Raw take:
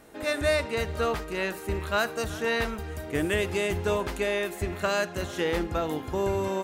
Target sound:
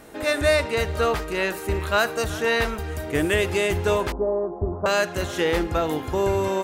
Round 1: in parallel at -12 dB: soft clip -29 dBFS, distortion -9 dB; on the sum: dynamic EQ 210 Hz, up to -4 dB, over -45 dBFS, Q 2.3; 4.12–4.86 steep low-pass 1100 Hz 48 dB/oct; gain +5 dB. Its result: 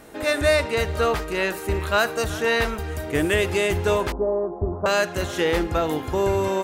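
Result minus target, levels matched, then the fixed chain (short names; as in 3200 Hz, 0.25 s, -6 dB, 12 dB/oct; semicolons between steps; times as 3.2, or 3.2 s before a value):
soft clip: distortion -5 dB
in parallel at -12 dB: soft clip -38.5 dBFS, distortion -4 dB; on the sum: dynamic EQ 210 Hz, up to -4 dB, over -45 dBFS, Q 2.3; 4.12–4.86 steep low-pass 1100 Hz 48 dB/oct; gain +5 dB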